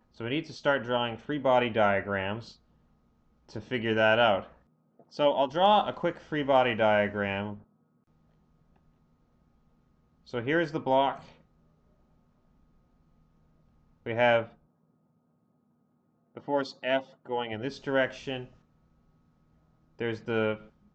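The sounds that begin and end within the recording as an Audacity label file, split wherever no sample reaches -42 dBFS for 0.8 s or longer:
3.490000	7.580000	sound
10.290000	11.290000	sound
14.060000	14.460000	sound
16.370000	18.450000	sound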